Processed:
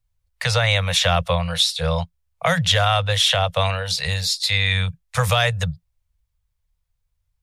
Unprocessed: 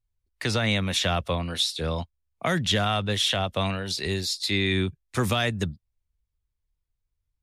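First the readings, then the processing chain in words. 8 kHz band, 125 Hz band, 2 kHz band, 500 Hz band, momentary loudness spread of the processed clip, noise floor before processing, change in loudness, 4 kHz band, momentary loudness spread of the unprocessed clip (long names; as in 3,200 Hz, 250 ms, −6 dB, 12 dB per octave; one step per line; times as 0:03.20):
+6.5 dB, +7.0 dB, +7.0 dB, +5.0 dB, 8 LU, −81 dBFS, +6.0 dB, +6.5 dB, 8 LU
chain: Chebyshev band-stop filter 170–480 Hz, order 4
level +7.5 dB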